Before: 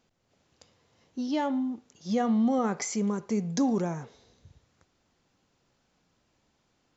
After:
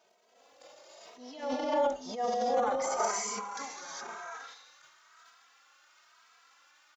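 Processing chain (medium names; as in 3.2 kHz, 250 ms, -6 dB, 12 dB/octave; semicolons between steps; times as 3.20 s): compression 1.5:1, threshold -60 dBFS, peak gain reduction 13.5 dB; high-pass sweep 580 Hz -> 1.3 kHz, 2.47–3.58 s; gated-style reverb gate 440 ms rising, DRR -5.5 dB; transient shaper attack -7 dB, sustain +9 dB; endless flanger 2.8 ms +1 Hz; trim +6.5 dB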